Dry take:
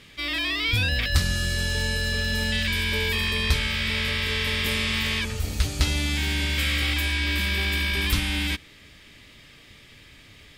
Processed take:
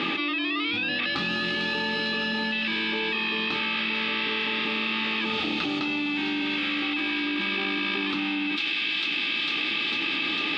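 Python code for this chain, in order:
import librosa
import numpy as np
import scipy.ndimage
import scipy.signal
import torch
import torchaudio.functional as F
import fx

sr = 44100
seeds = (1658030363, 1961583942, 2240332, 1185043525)

p1 = scipy.signal.sosfilt(scipy.signal.cheby1(3, 1.0, [190.0, 3900.0], 'bandpass', fs=sr, output='sos'), x)
p2 = fx.small_body(p1, sr, hz=(320.0, 840.0, 1200.0, 2600.0), ring_ms=45, db=15)
p3 = p2 + fx.echo_wet_highpass(p2, sr, ms=450, feedback_pct=71, hz=2900.0, wet_db=-7.0, dry=0)
p4 = fx.env_flatten(p3, sr, amount_pct=100)
y = p4 * 10.0 ** (-9.0 / 20.0)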